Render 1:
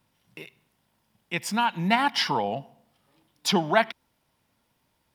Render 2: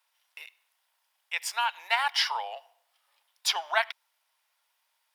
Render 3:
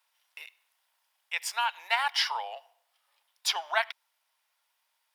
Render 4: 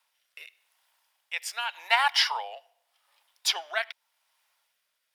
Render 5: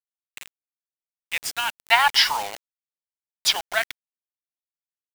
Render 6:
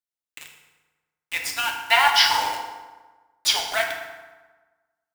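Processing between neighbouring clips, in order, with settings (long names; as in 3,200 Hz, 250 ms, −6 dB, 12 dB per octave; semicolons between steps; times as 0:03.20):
Bessel high-pass filter 1,100 Hz, order 8
speech leveller 2 s
rotating-speaker cabinet horn 0.85 Hz; level +5 dB
bit-depth reduction 6 bits, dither none; level +5.5 dB
feedback delay network reverb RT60 1.3 s, low-frequency decay 1.05×, high-frequency decay 0.65×, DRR 0.5 dB; level −1.5 dB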